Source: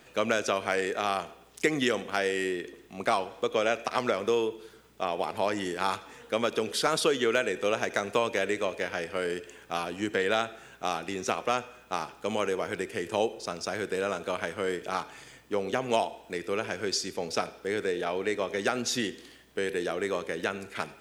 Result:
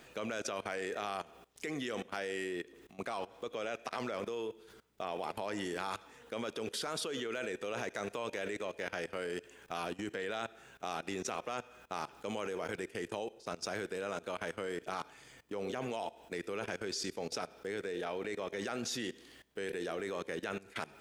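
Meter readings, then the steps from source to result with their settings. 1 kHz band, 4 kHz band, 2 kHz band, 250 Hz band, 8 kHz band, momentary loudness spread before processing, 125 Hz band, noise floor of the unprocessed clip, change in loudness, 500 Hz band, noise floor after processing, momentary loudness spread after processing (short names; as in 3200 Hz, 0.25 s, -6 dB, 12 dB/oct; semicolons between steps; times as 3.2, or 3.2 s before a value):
-10.0 dB, -9.0 dB, -9.5 dB, -8.0 dB, -7.5 dB, 8 LU, -7.0 dB, -55 dBFS, -9.5 dB, -10.0 dB, -58 dBFS, 5 LU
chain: limiter -18.5 dBFS, peak gain reduction 5.5 dB; level quantiser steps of 19 dB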